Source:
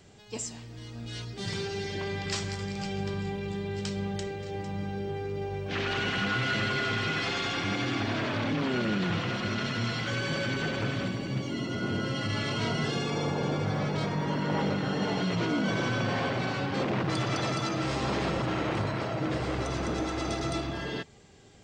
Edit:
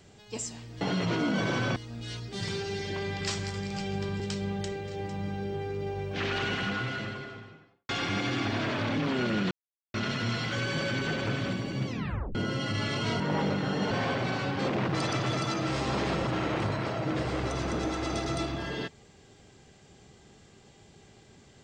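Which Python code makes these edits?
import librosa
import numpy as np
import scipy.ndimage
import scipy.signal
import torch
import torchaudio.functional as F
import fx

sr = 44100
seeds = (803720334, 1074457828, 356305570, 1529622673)

y = fx.studio_fade_out(x, sr, start_s=5.84, length_s=1.6)
y = fx.edit(y, sr, fx.cut(start_s=3.25, length_s=0.5),
    fx.silence(start_s=9.06, length_s=0.43),
    fx.tape_stop(start_s=11.42, length_s=0.48),
    fx.cut(start_s=12.75, length_s=1.65),
    fx.move(start_s=15.11, length_s=0.95, to_s=0.81),
    fx.reverse_span(start_s=17.16, length_s=0.32), tone=tone)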